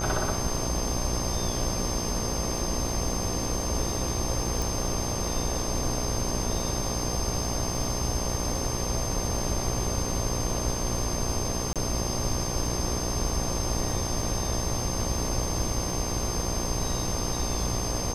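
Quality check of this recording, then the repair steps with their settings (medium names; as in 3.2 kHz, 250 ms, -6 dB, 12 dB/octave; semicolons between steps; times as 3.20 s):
buzz 60 Hz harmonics 20 -33 dBFS
crackle 21 per s -34 dBFS
whine 6.3 kHz -34 dBFS
4.62 s: pop
11.73–11.76 s: dropout 27 ms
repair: de-click; band-stop 6.3 kHz, Q 30; de-hum 60 Hz, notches 20; interpolate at 11.73 s, 27 ms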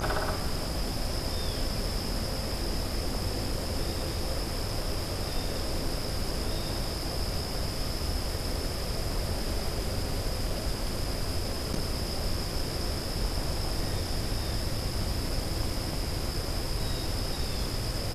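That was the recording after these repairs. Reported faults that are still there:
nothing left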